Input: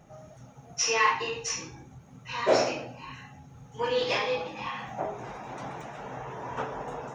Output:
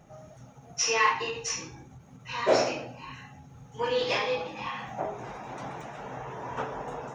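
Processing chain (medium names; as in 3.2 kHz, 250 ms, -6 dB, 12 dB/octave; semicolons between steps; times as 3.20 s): endings held to a fixed fall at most 170 dB/s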